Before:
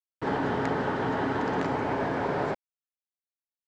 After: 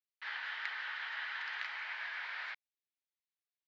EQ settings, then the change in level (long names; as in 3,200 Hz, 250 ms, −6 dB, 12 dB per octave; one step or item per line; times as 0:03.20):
four-pole ladder high-pass 1,600 Hz, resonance 40%
low-pass with resonance 4,300 Hz, resonance Q 1.8
high-frequency loss of the air 69 metres
+3.0 dB